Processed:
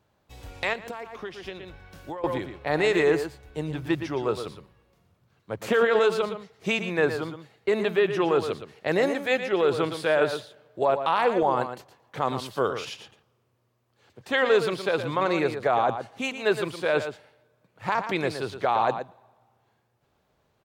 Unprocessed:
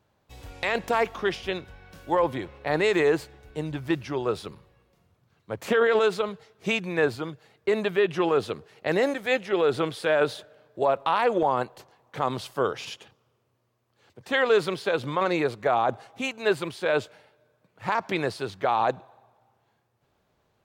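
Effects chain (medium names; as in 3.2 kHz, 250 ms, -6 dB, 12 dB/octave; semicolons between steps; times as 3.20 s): echo from a far wall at 20 m, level -9 dB; 0.73–2.24 s: compression 16:1, threshold -33 dBFS, peak gain reduction 16 dB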